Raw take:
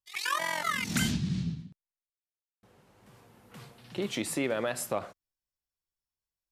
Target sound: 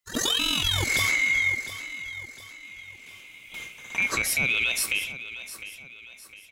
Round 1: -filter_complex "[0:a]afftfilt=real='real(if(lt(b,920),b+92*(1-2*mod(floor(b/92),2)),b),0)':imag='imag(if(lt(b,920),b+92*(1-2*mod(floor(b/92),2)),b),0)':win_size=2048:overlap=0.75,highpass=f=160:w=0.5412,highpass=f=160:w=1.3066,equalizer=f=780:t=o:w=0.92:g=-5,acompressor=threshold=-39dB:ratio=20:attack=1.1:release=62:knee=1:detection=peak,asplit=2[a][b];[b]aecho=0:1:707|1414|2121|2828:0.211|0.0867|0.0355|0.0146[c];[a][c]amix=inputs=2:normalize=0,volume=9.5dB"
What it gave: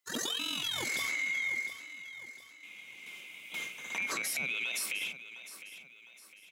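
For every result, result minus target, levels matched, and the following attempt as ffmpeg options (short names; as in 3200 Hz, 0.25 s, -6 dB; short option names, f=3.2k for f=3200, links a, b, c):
compressor: peak gain reduction +10.5 dB; 125 Hz band -10.0 dB
-filter_complex "[0:a]afftfilt=real='real(if(lt(b,920),b+92*(1-2*mod(floor(b/92),2)),b),0)':imag='imag(if(lt(b,920),b+92*(1-2*mod(floor(b/92),2)),b),0)':win_size=2048:overlap=0.75,highpass=f=160:w=0.5412,highpass=f=160:w=1.3066,equalizer=f=780:t=o:w=0.92:g=-5,acompressor=threshold=-28dB:ratio=20:attack=1.1:release=62:knee=1:detection=peak,asplit=2[a][b];[b]aecho=0:1:707|1414|2121|2828:0.211|0.0867|0.0355|0.0146[c];[a][c]amix=inputs=2:normalize=0,volume=9.5dB"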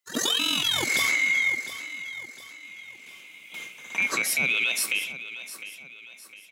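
125 Hz band -10.5 dB
-filter_complex "[0:a]afftfilt=real='real(if(lt(b,920),b+92*(1-2*mod(floor(b/92),2)),b),0)':imag='imag(if(lt(b,920),b+92*(1-2*mod(floor(b/92),2)),b),0)':win_size=2048:overlap=0.75,equalizer=f=780:t=o:w=0.92:g=-5,acompressor=threshold=-28dB:ratio=20:attack=1.1:release=62:knee=1:detection=peak,asplit=2[a][b];[b]aecho=0:1:707|1414|2121|2828:0.211|0.0867|0.0355|0.0146[c];[a][c]amix=inputs=2:normalize=0,volume=9.5dB"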